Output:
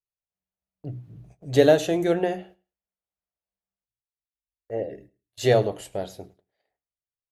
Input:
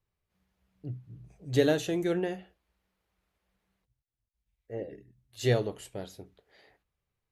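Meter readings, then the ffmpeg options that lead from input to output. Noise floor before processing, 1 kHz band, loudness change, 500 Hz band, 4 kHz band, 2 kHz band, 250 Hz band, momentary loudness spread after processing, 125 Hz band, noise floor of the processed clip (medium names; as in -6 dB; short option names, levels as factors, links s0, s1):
under -85 dBFS, +11.0 dB, +8.0 dB, +8.5 dB, +5.0 dB, +5.5 dB, +5.0 dB, 20 LU, +3.0 dB, under -85 dBFS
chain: -af "equalizer=f=660:w=2:g=8,bandreject=f=60:t=h:w=6,bandreject=f=120:t=h:w=6,bandreject=f=180:t=h:w=6,bandreject=f=240:t=h:w=6,bandreject=f=300:t=h:w=6,bandreject=f=360:t=h:w=6,agate=range=0.0447:threshold=0.00224:ratio=16:detection=peak,aecho=1:1:106|212:0.0708|0.012,volume=1.78"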